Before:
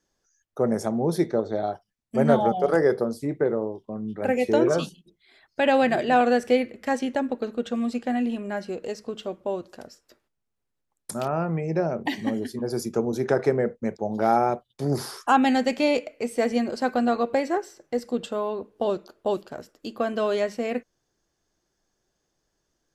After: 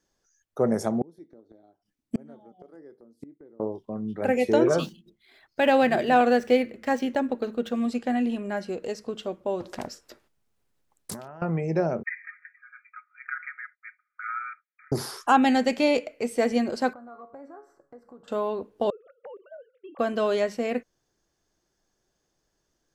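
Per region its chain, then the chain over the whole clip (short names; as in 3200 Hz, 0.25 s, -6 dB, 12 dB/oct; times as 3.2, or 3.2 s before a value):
1.01–3.6 bell 290 Hz +14.5 dB 0.71 oct + flipped gate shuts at -16 dBFS, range -34 dB
4.79–7.86 median filter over 5 samples + de-hum 111.1 Hz, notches 3
9.6–11.42 negative-ratio compressor -38 dBFS + Doppler distortion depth 0.53 ms
12.03–14.92 brick-wall FIR band-pass 1200–2500 Hz + comb 5.5 ms, depth 57%
16.93–18.28 resonant high shelf 1900 Hz -14 dB, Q 3 + compressor 2.5:1, threshold -41 dBFS + resonator 140 Hz, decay 0.4 s, mix 70%
18.9–19.99 sine-wave speech + LPF 1100 Hz 6 dB/oct + compressor 12:1, threshold -39 dBFS
whole clip: dry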